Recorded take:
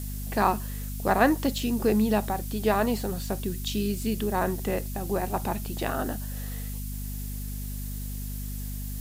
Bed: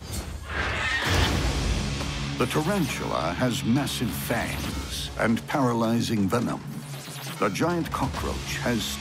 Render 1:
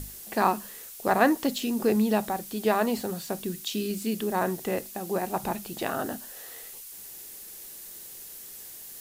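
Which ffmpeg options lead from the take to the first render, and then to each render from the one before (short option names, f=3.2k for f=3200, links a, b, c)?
-af "bandreject=f=50:t=h:w=6,bandreject=f=100:t=h:w=6,bandreject=f=150:t=h:w=6,bandreject=f=200:t=h:w=6,bandreject=f=250:t=h:w=6"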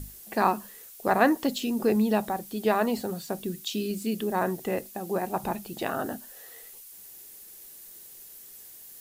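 -af "afftdn=nr=6:nf=-44"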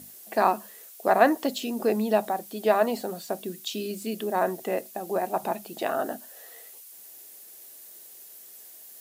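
-af "highpass=240,equalizer=f=650:w=4:g=7"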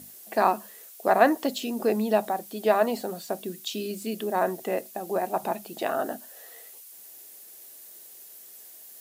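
-af anull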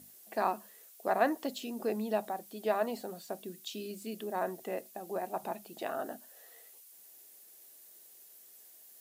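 -af "volume=-9dB"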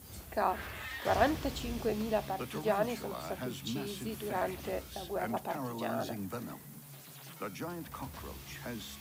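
-filter_complex "[1:a]volume=-16dB[a];[0:a][a]amix=inputs=2:normalize=0"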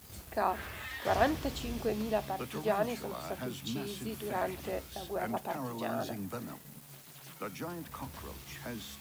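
-af "aeval=exprs='val(0)*gte(abs(val(0)),0.00316)':c=same"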